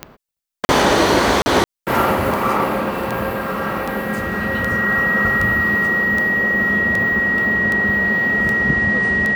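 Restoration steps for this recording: de-click; band-stop 1.9 kHz, Q 30; interpolate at 0.65/1.42 s, 40 ms

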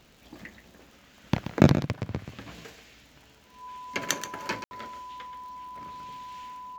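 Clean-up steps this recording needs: de-click; band-stop 1 kHz, Q 30; room tone fill 4.64–4.71 s; inverse comb 130 ms -10.5 dB

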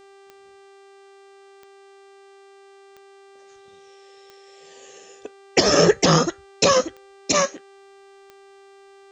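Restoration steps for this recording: de-click; de-hum 393.9 Hz, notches 23

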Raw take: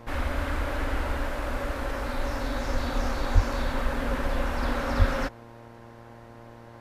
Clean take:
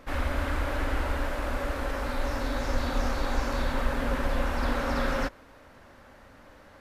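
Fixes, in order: de-hum 116.4 Hz, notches 9; de-plosive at 3.34/4.98 s

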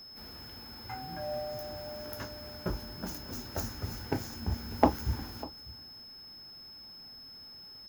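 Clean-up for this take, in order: clip repair -8 dBFS; band-stop 5.2 kHz, Q 30; inverse comb 598 ms -19.5 dB

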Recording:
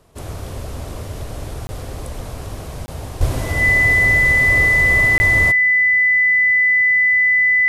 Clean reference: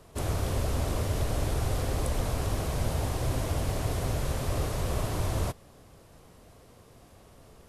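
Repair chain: band-stop 2 kHz, Q 30; 3.19–3.31 s: high-pass 140 Hz 24 dB/octave; interpolate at 1.67/2.86/5.18 s, 20 ms; trim 0 dB, from 3.21 s -7.5 dB

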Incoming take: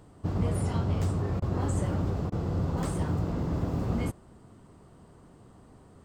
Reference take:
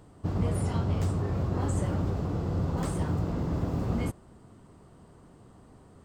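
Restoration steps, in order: interpolate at 1.40/2.30 s, 19 ms

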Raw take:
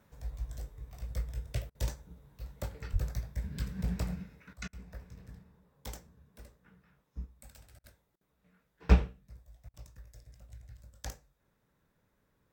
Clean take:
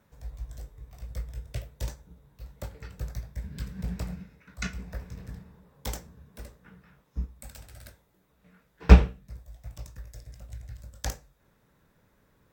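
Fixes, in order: 2.92–3.04 s: high-pass 140 Hz 24 dB/octave; interpolate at 1.70/4.68/7.79/8.16/9.69 s, 48 ms; trim 0 dB, from 4.53 s +9 dB

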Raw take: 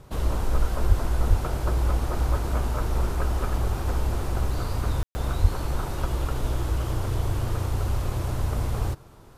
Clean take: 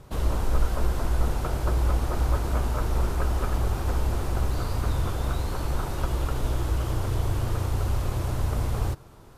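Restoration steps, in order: de-plosive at 0.88/1.29/5.41 s; room tone fill 5.03–5.15 s

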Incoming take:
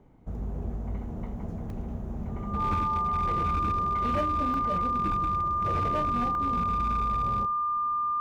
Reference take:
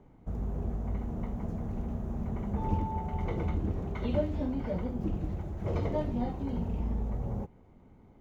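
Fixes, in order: clip repair -22 dBFS; band-stop 1.2 kHz, Q 30; interpolate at 1.70/4.54/5.12/6.35 s, 1.4 ms; inverse comb 79 ms -18.5 dB

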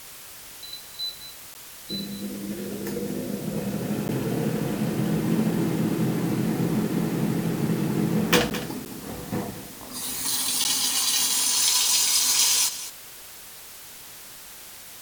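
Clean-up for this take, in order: interpolate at 1.54/4.08/8.50/8.85/10.64 s, 9.8 ms; noise reduction 29 dB, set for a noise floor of -43 dBFS; inverse comb 211 ms -13 dB

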